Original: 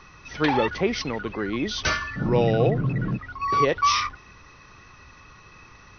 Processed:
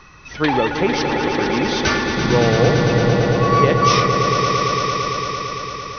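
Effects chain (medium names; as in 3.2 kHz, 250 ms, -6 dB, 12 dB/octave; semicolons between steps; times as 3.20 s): echo with a slow build-up 113 ms, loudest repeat 5, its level -8 dB; trim +4 dB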